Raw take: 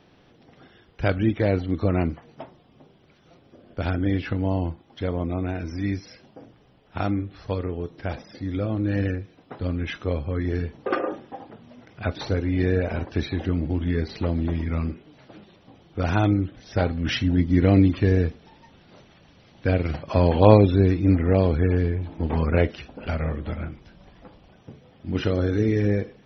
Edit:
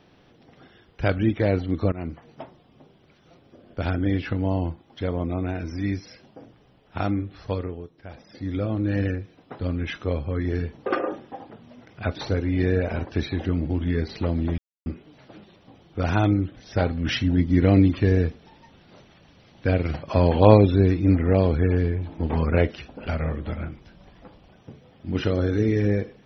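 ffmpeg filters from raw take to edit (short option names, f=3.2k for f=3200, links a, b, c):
-filter_complex "[0:a]asplit=6[a][b][c][d][e][f];[a]atrim=end=1.92,asetpts=PTS-STARTPTS,afade=t=out:st=1.916:d=0.004:c=hsin:silence=0.1[g];[b]atrim=start=1.92:end=7.9,asetpts=PTS-STARTPTS,afade=t=in:d=0.35:silence=0.1,afade=t=out:st=5.63:d=0.35:silence=0.266073[h];[c]atrim=start=7.9:end=8.12,asetpts=PTS-STARTPTS,volume=-11.5dB[i];[d]atrim=start=8.12:end=14.58,asetpts=PTS-STARTPTS,afade=t=in:d=0.35:silence=0.266073,afade=t=out:st=6.456:d=0.004:c=hsin[j];[e]atrim=start=14.58:end=14.86,asetpts=PTS-STARTPTS,volume=0[k];[f]atrim=start=14.86,asetpts=PTS-STARTPTS,afade=t=in:d=0.004:c=hsin[l];[g][h][i][j][k][l]concat=n=6:v=0:a=1"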